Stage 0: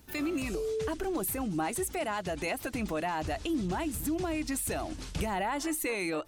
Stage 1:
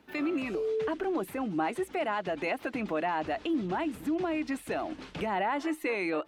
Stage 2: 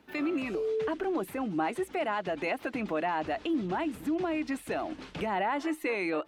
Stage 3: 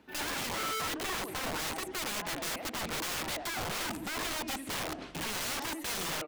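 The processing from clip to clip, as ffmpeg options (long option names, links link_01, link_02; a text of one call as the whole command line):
ffmpeg -i in.wav -filter_complex "[0:a]acrossover=split=180 3500:gain=0.112 1 0.1[link_01][link_02][link_03];[link_01][link_02][link_03]amix=inputs=3:normalize=0,volume=2.5dB" out.wav
ffmpeg -i in.wav -af anull out.wav
ffmpeg -i in.wav -filter_complex "[0:a]asplit=2[link_01][link_02];[link_02]adelay=83,lowpass=frequency=2000:poles=1,volume=-12dB,asplit=2[link_03][link_04];[link_04]adelay=83,lowpass=frequency=2000:poles=1,volume=0.5,asplit=2[link_05][link_06];[link_06]adelay=83,lowpass=frequency=2000:poles=1,volume=0.5,asplit=2[link_07][link_08];[link_08]adelay=83,lowpass=frequency=2000:poles=1,volume=0.5,asplit=2[link_09][link_10];[link_10]adelay=83,lowpass=frequency=2000:poles=1,volume=0.5[link_11];[link_01][link_03][link_05][link_07][link_09][link_11]amix=inputs=6:normalize=0,aeval=exprs='(mod(33.5*val(0)+1,2)-1)/33.5':channel_layout=same" out.wav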